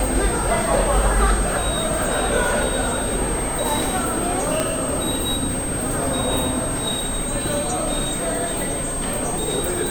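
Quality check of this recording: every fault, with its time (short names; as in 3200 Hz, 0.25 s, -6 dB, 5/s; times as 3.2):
tone 8400 Hz -26 dBFS
4.6 pop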